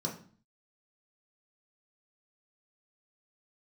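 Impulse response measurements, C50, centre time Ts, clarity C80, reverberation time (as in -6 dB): 9.0 dB, 22 ms, 13.5 dB, 0.45 s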